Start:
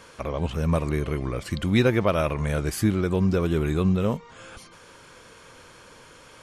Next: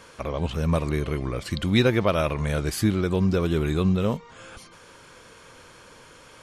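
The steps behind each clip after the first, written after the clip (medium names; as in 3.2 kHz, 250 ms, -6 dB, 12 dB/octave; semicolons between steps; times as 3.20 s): dynamic bell 4 kHz, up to +5 dB, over -49 dBFS, Q 1.7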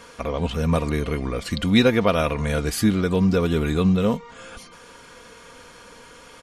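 comb 4.2 ms, depth 44%; trim +2.5 dB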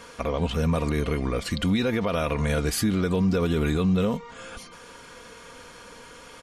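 peak limiter -16 dBFS, peak gain reduction 11 dB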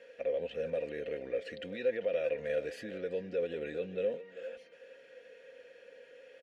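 vowel filter e; speakerphone echo 390 ms, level -12 dB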